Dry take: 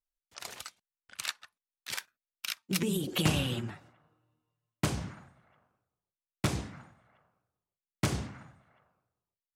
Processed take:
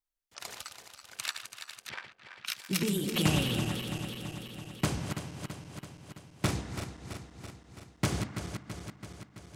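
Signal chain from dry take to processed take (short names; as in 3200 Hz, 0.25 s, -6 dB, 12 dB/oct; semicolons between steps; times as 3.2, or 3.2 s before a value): regenerating reverse delay 0.166 s, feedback 80%, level -8 dB; 1.89–2.46 LPF 2200 Hz 12 dB/oct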